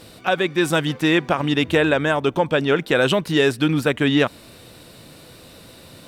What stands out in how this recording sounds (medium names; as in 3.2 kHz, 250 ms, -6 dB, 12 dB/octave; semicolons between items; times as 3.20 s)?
noise floor -45 dBFS; spectral tilt -4.0 dB/octave